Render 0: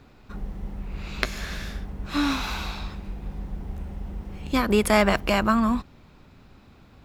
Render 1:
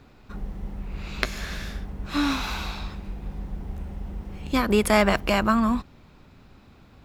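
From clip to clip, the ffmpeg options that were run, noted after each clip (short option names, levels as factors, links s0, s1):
-af anull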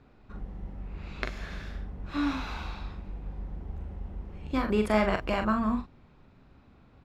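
-filter_complex "[0:a]aemphasis=mode=reproduction:type=75kf,asplit=2[s0][s1];[s1]adelay=42,volume=0.501[s2];[s0][s2]amix=inputs=2:normalize=0,volume=0.501"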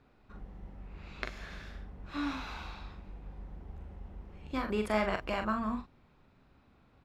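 -af "lowshelf=f=440:g=-4.5,volume=0.668"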